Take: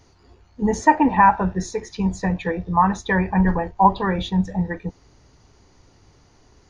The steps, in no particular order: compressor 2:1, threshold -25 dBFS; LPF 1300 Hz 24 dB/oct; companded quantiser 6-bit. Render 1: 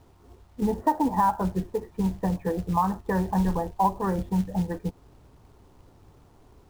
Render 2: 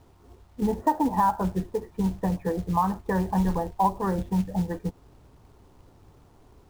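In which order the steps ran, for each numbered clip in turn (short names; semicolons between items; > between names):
LPF > companded quantiser > compressor; LPF > compressor > companded quantiser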